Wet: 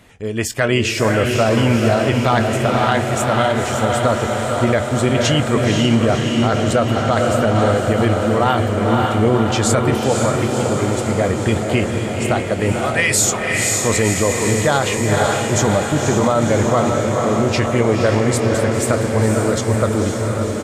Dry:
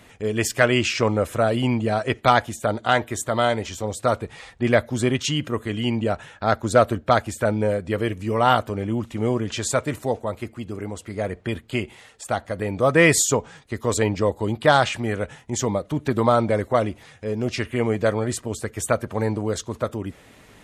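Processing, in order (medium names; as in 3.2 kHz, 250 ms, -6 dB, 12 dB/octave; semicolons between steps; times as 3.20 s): 12.72–13.79 s: amplifier tone stack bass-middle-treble 10-0-10; level rider gain up to 9 dB; bass shelf 180 Hz +4 dB; doubling 22 ms -14 dB; on a send: echo that smears into a reverb 519 ms, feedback 70%, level -4 dB; on the sum: loudness maximiser +4.5 dB; trim -4.5 dB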